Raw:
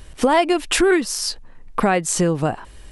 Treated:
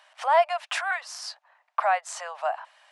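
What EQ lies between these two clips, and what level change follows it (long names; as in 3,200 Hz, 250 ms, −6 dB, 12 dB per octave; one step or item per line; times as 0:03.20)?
Butterworth high-pass 620 Hz 72 dB per octave
dynamic equaliser 3,100 Hz, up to −4 dB, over −33 dBFS, Q 1.1
head-to-tape spacing loss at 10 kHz 20 dB
0.0 dB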